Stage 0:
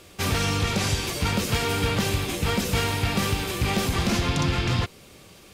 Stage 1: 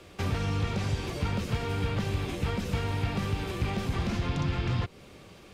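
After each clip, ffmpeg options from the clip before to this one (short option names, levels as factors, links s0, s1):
-filter_complex "[0:a]acrossover=split=150|920[s0][s1][s2];[s0]acompressor=threshold=0.0447:ratio=4[s3];[s1]acompressor=threshold=0.0178:ratio=4[s4];[s2]acompressor=threshold=0.0158:ratio=4[s5];[s3][s4][s5]amix=inputs=3:normalize=0,lowpass=f=2600:p=1"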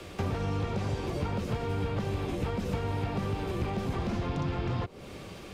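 -filter_complex "[0:a]acrossover=split=290|1100[s0][s1][s2];[s0]acompressor=threshold=0.0112:ratio=4[s3];[s1]acompressor=threshold=0.00794:ratio=4[s4];[s2]acompressor=threshold=0.00178:ratio=4[s5];[s3][s4][s5]amix=inputs=3:normalize=0,volume=2.24"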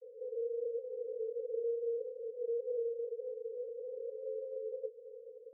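-af "asuperpass=centerf=480:order=20:qfactor=4.5,volume=1.5"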